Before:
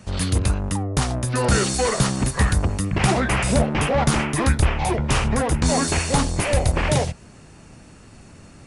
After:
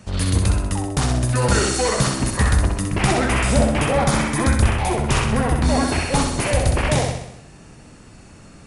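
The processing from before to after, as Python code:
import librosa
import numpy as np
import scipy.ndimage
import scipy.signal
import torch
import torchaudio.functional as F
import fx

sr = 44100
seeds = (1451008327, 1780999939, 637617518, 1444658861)

y = fx.notch(x, sr, hz=2800.0, q=8.4, at=(3.86, 4.63))
y = fx.peak_eq(y, sr, hz=7000.0, db=-10.0, octaves=0.87, at=(5.19, 6.15))
y = fx.echo_feedback(y, sr, ms=64, feedback_pct=56, wet_db=-5)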